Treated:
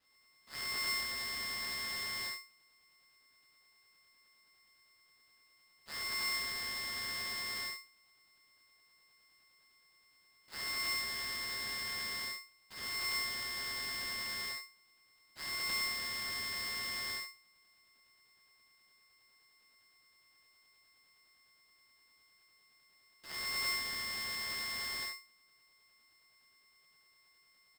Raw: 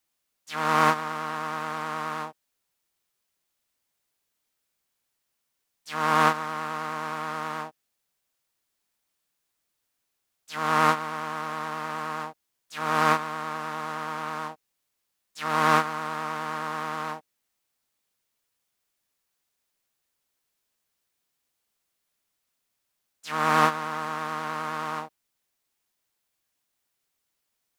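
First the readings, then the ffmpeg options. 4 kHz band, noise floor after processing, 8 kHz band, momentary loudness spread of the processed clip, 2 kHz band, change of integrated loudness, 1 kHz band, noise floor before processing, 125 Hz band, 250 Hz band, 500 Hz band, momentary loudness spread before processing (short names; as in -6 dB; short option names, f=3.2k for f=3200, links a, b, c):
+2.0 dB, -69 dBFS, +0.5 dB, 11 LU, -7.0 dB, -9.5 dB, -22.5 dB, -79 dBFS, -20.0 dB, -21.0 dB, -21.5 dB, 14 LU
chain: -filter_complex "[0:a]aemphasis=mode=production:type=50fm,afftfilt=real='re*lt(hypot(re,im),0.1)':imag='im*lt(hypot(re,im),0.1)':win_size=1024:overlap=0.75,lowshelf=f=210:t=q:w=1.5:g=-14,acrossover=split=930[a][b];[a]aeval=exprs='val(0)*(1-0.7/2+0.7/2*cos(2*PI*9.7*n/s))':c=same[c];[b]aeval=exprs='val(0)*(1-0.7/2-0.7/2*cos(2*PI*9.7*n/s))':c=same[d];[c][d]amix=inputs=2:normalize=0,aeval=exprs='abs(val(0))':c=same,asplit=2[e][f];[f]aecho=0:1:29|68:0.376|0.531[g];[e][g]amix=inputs=2:normalize=0,lowpass=f=3.1k:t=q:w=0.5098,lowpass=f=3.1k:t=q:w=0.6013,lowpass=f=3.1k:t=q:w=0.9,lowpass=f=3.1k:t=q:w=2.563,afreqshift=-3700,aeval=exprs='val(0)*sgn(sin(2*PI*1600*n/s))':c=same,volume=-5.5dB"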